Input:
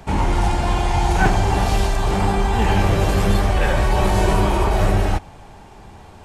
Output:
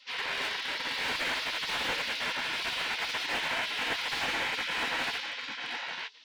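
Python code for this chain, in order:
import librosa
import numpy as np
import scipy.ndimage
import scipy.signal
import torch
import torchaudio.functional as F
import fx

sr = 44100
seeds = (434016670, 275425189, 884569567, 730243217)

p1 = fx.high_shelf(x, sr, hz=2400.0, db=8.0)
p2 = np.clip(10.0 ** (21.5 / 20.0) * p1, -1.0, 1.0) / 10.0 ** (21.5 / 20.0)
p3 = p1 + (p2 * 10.0 ** (-10.0 / 20.0))
p4 = fx.formant_shift(p3, sr, semitones=-6)
p5 = scipy.signal.sosfilt(scipy.signal.butter(4, 3900.0, 'lowpass', fs=sr, output='sos'), p4)
p6 = p5 + fx.echo_single(p5, sr, ms=896, db=-5.0, dry=0)
p7 = fx.spec_gate(p6, sr, threshold_db=-25, keep='weak')
p8 = fx.highpass(p7, sr, hz=340.0, slope=6)
p9 = fx.peak_eq(p8, sr, hz=1200.0, db=-13.5, octaves=0.21)
y = fx.slew_limit(p9, sr, full_power_hz=88.0)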